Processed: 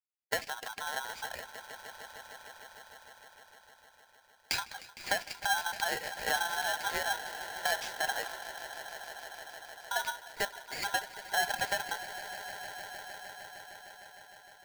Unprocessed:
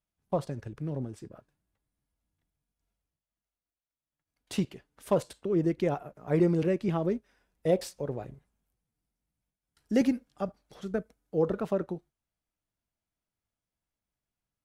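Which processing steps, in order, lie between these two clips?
spectral magnitudes quantised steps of 15 dB
downward expander −53 dBFS
high-shelf EQ 2,400 Hz +11 dB
downward compressor 6 to 1, threshold −38 dBFS, peak gain reduction 17.5 dB
loudspeaker in its box 250–4,500 Hz, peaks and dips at 430 Hz +7 dB, 720 Hz +4 dB, 3,500 Hz +10 dB
on a send: echo that builds up and dies away 153 ms, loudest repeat 5, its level −16.5 dB
on the sum: ring modulator with a square carrier 1,200 Hz
level +6 dB

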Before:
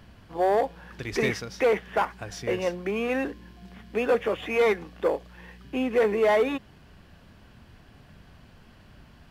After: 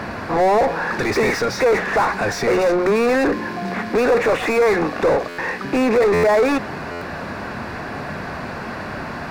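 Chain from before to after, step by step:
mid-hump overdrive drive 36 dB, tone 1,300 Hz, clips at −14 dBFS
parametric band 3,100 Hz −15 dB 0.25 octaves
mains-hum notches 60/120/180 Hz
buffer that repeats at 0:05.28/0:06.13/0:06.91, samples 512, times 8
level +5 dB

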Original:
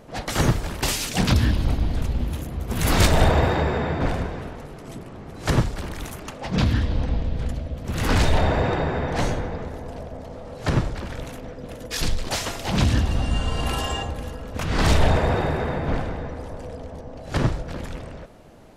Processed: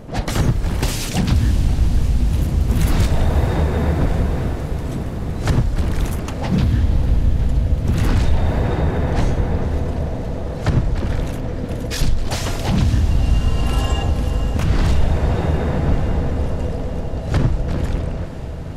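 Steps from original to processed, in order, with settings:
downward compressor 6 to 1, threshold −26 dBFS, peak gain reduction 13.5 dB
low-shelf EQ 280 Hz +11 dB
feedback delay with all-pass diffusion 529 ms, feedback 78%, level −12.5 dB
level +4 dB

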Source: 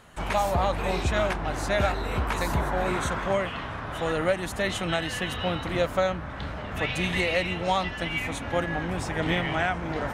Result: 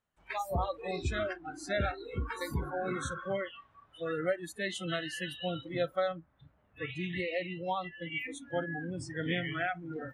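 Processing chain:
noise reduction from a noise print of the clip's start 28 dB
0:06.19–0:08.12: head-to-tape spacing loss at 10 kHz 21 dB
level −6 dB

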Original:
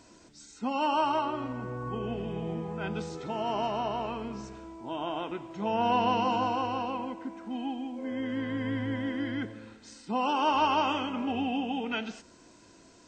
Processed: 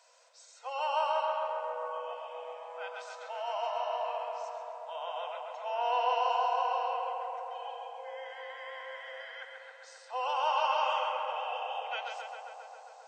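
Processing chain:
Chebyshev high-pass filter 480 Hz, order 10
feedback echo with a low-pass in the loop 134 ms, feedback 84%, low-pass 2,900 Hz, level −3.5 dB
level −4 dB

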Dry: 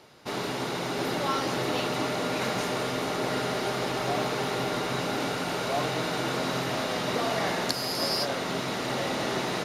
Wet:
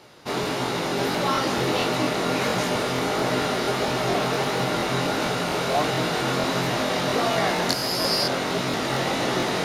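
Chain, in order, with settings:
chorus effect 1.5 Hz, delay 16 ms, depth 6.7 ms
regular buffer underruns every 0.23 s, samples 1,024, repeat, from 0:00.41
level +8 dB

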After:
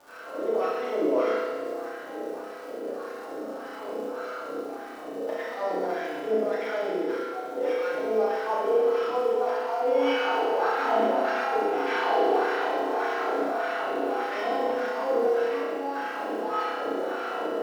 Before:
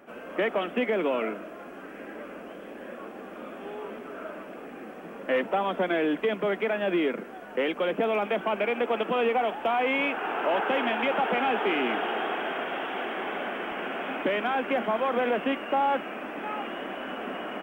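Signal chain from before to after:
samples sorted by size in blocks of 8 samples
high-shelf EQ 6,700 Hz −11 dB
compressor whose output falls as the input rises −28 dBFS, ratio −0.5
LFO wah 1.7 Hz 400–1,700 Hz, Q 2.1
on a send: flutter between parallel walls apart 5.5 metres, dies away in 0.68 s
on the sum: surface crackle 210 per second −45 dBFS
feedback delay network reverb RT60 1.7 s, low-frequency decay 0.9×, high-frequency decay 1×, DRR −5 dB

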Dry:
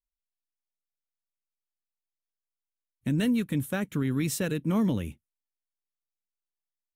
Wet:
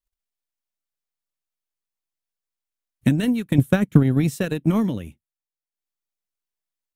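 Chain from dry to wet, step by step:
0:03.58–0:04.36: parametric band 120 Hz +7 dB 2.4 octaves
transient designer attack +11 dB, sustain −7 dB
level +2.5 dB

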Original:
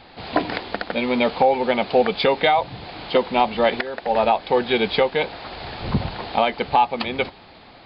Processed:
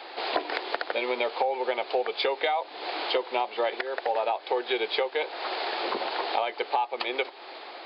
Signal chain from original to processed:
Chebyshev high-pass filter 350 Hz, order 4
downward compressor 4 to 1, threshold −32 dBFS, peak gain reduction 16.5 dB
level +5.5 dB

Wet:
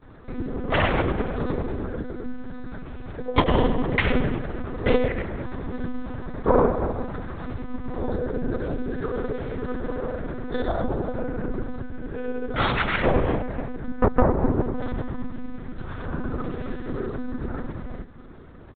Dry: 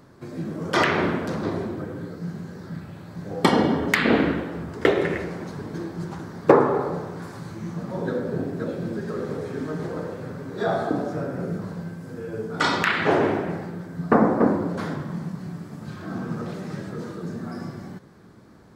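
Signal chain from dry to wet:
dynamic equaliser 1,600 Hz, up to −4 dB, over −39 dBFS, Q 1.9
in parallel at +1.5 dB: downward compressor 6 to 1, threshold −34 dBFS, peak gain reduction 22.5 dB
on the sum: granular cloud, pitch spread up and down by 0 semitones
one-pitch LPC vocoder at 8 kHz 250 Hz

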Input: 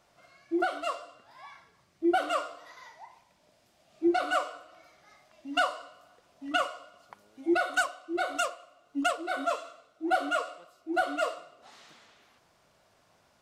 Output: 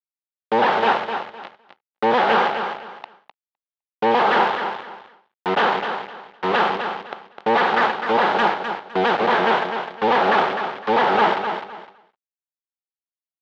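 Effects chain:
sub-harmonics by changed cycles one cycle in 3, inverted
log-companded quantiser 2 bits
on a send: repeating echo 255 ms, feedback 25%, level −7.5 dB
on the sum: downward expander −53 dBFS
loudspeaker in its box 220–3,300 Hz, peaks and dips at 290 Hz −7 dB, 830 Hz +7 dB, 2,500 Hz −4 dB
level +8.5 dB

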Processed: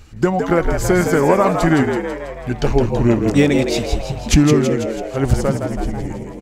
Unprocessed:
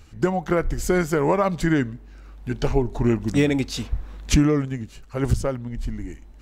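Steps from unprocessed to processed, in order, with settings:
echo with shifted repeats 164 ms, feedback 58%, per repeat +88 Hz, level −6.5 dB
level +5 dB

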